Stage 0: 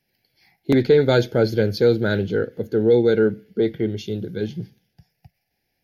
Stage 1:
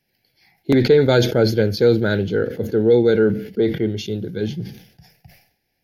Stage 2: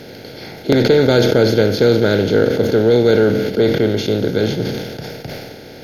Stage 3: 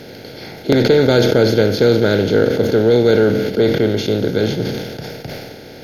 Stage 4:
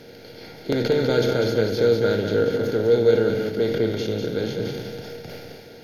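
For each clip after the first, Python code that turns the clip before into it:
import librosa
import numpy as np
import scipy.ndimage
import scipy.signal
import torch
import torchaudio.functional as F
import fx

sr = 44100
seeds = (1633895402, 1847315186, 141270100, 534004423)

y1 = fx.sustainer(x, sr, db_per_s=98.0)
y1 = y1 * 10.0 ** (1.5 / 20.0)
y2 = fx.bin_compress(y1, sr, power=0.4)
y2 = y2 * 10.0 ** (-1.5 / 20.0)
y3 = y2
y4 = fx.comb_fb(y3, sr, f0_hz=470.0, decay_s=0.31, harmonics='all', damping=0.0, mix_pct=70)
y4 = y4 + 10.0 ** (-6.0 / 20.0) * np.pad(y4, (int(197 * sr / 1000.0), 0))[:len(y4)]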